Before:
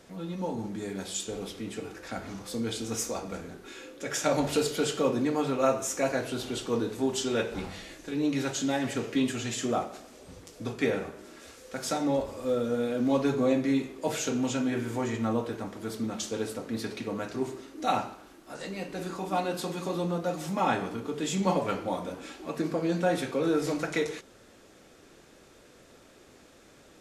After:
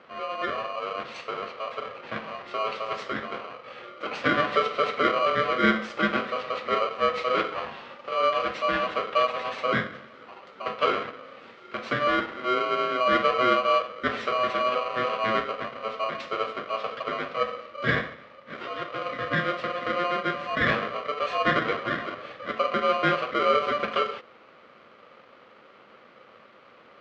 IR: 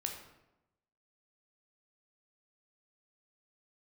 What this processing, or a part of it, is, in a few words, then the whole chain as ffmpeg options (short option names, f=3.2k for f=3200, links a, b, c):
ring modulator pedal into a guitar cabinet: -af "aeval=exprs='val(0)*sgn(sin(2*PI*880*n/s))':c=same,highpass=90,equalizer=f=140:t=q:w=4:g=3,equalizer=f=220:t=q:w=4:g=8,equalizer=f=520:t=q:w=4:g=8,equalizer=f=1.2k:t=q:w=4:g=5,equalizer=f=1.9k:t=q:w=4:g=6,lowpass=f=3.6k:w=0.5412,lowpass=f=3.6k:w=1.3066"